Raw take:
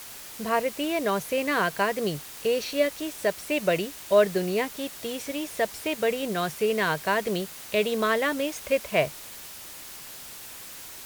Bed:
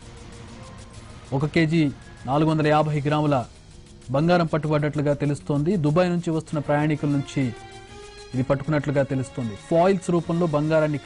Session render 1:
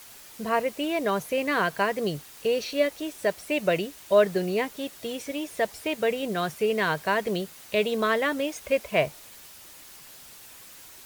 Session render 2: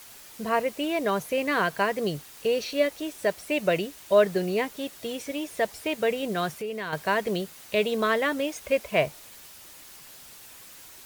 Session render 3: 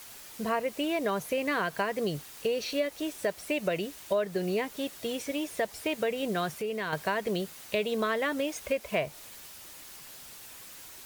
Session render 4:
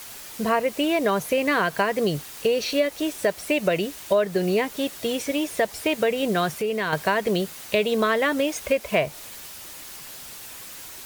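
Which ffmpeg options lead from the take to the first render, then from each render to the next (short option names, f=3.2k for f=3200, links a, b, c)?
-af "afftdn=nr=6:nf=-42"
-filter_complex "[0:a]asettb=1/sr,asplit=3[a][b][c];[a]atrim=end=6.524[d];[b]atrim=start=6.52:end=6.93,asetpts=PTS-STARTPTS,afade=t=in:d=0.004:c=qsin,afade=t=out:st=0.406:d=0.004:c=qsin,acompressor=threshold=-36dB:ratio=2:attack=3.2:release=140:knee=1:detection=peak[e];[c]atrim=start=6.926[f];[d][e]acrossfade=d=0.004:c1=hsin:c2=qsin[g];[g][f]acrossfade=d=0.004:c1=qsin:c2=hsin"
-af "acompressor=threshold=-26dB:ratio=4"
-af "volume=7.5dB"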